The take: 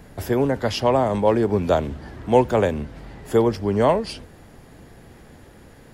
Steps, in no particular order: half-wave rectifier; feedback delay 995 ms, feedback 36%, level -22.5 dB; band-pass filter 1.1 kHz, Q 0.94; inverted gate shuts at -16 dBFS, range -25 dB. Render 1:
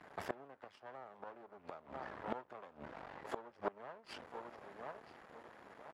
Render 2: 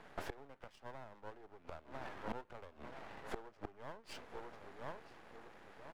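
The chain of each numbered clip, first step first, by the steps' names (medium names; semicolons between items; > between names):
feedback delay > half-wave rectifier > inverted gate > band-pass filter; feedback delay > inverted gate > band-pass filter > half-wave rectifier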